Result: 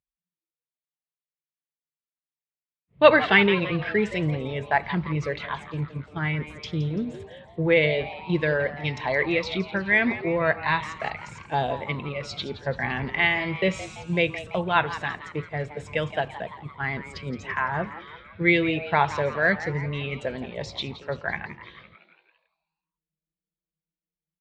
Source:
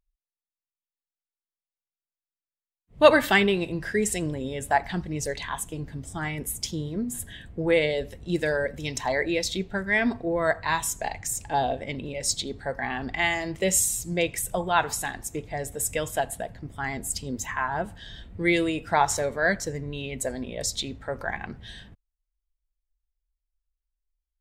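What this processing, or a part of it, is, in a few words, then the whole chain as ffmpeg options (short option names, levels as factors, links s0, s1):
frequency-shifting delay pedal into a guitar cabinet: -filter_complex "[0:a]agate=range=0.355:threshold=0.02:ratio=16:detection=peak,asettb=1/sr,asplit=3[s0][s1][s2];[s0]atrim=end=12.554[s3];[s1]atrim=start=12.55:end=13.05,asetpts=PTS-STARTPTS,afade=t=in:d=0.004:c=qsin,afade=t=out:st=0.496:d=0.004:c=qsin,lowshelf=f=200:g=7.5[s4];[s2]atrim=start=13.046[s5];[s3][s4]acrossfade=d=0.004:c1=hsin:c2=qsin[s6];[s6][s5]acrossfade=d=0.004:c1=qsin:c2=hsin,asplit=7[s7][s8][s9][s10][s11][s12][s13];[s8]adelay=169,afreqshift=150,volume=0.2[s14];[s9]adelay=338,afreqshift=300,volume=0.11[s15];[s10]adelay=507,afreqshift=450,volume=0.0603[s16];[s11]adelay=676,afreqshift=600,volume=0.0331[s17];[s12]adelay=845,afreqshift=750,volume=0.0182[s18];[s13]adelay=1014,afreqshift=900,volume=0.01[s19];[s7][s14][s15][s16][s17][s18][s19]amix=inputs=7:normalize=0,highpass=85,equalizer=f=150:t=q:w=4:g=6,equalizer=f=270:t=q:w=4:g=-5,equalizer=f=750:t=q:w=4:g=-5,equalizer=f=2300:t=q:w=4:g=4,lowpass=f=3800:w=0.5412,lowpass=f=3800:w=1.3066,volume=1.26"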